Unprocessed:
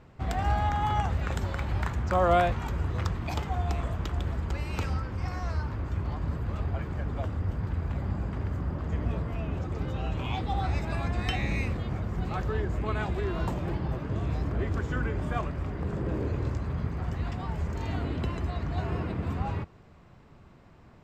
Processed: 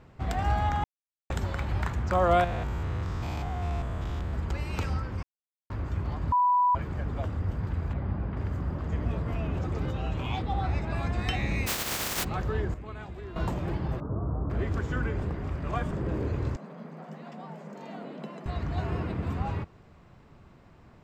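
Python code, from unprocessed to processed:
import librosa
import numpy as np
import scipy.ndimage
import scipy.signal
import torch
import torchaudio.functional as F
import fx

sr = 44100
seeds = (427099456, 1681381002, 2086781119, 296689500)

y = fx.spec_steps(x, sr, hold_ms=200, at=(2.44, 4.34))
y = fx.gaussian_blur(y, sr, sigma=2.2, at=(7.93, 8.37))
y = fx.env_flatten(y, sr, amount_pct=50, at=(9.26, 9.91))
y = fx.lowpass(y, sr, hz=3400.0, slope=6, at=(10.42, 10.96))
y = fx.spec_flatten(y, sr, power=0.17, at=(11.66, 12.23), fade=0.02)
y = fx.ellip_lowpass(y, sr, hz=1300.0, order=4, stop_db=50, at=(14.0, 14.5))
y = fx.cheby_ripple_highpass(y, sr, hz=150.0, ripple_db=9, at=(16.56, 18.46))
y = fx.edit(y, sr, fx.silence(start_s=0.84, length_s=0.46),
    fx.silence(start_s=5.23, length_s=0.47),
    fx.bleep(start_s=6.32, length_s=0.43, hz=987.0, db=-19.5),
    fx.clip_gain(start_s=12.74, length_s=0.62, db=-10.5),
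    fx.reverse_span(start_s=15.23, length_s=0.68), tone=tone)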